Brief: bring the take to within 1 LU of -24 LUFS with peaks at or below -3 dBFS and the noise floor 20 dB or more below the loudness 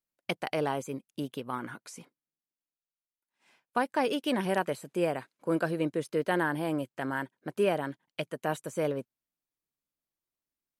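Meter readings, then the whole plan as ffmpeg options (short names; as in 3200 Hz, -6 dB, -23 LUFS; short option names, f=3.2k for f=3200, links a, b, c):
loudness -32.0 LUFS; peak -14.5 dBFS; loudness target -24.0 LUFS
-> -af "volume=8dB"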